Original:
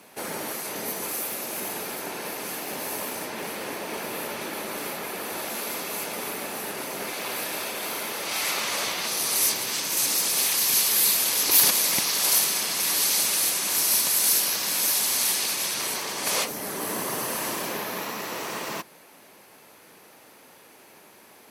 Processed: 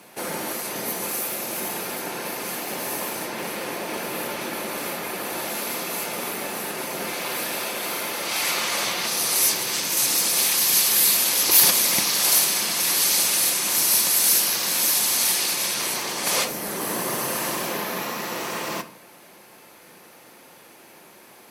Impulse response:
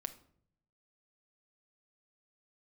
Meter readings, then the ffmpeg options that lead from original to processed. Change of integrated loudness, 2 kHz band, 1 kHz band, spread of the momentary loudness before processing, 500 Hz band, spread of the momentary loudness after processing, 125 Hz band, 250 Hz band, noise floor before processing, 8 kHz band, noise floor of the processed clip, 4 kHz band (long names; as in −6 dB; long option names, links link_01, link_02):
+3.0 dB, +3.0 dB, +3.0 dB, 13 LU, +3.0 dB, 13 LU, +4.0 dB, +3.5 dB, −52 dBFS, +3.0 dB, −49 dBFS, +3.0 dB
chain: -filter_complex "[1:a]atrim=start_sample=2205[link_01];[0:a][link_01]afir=irnorm=-1:irlink=0,volume=5dB"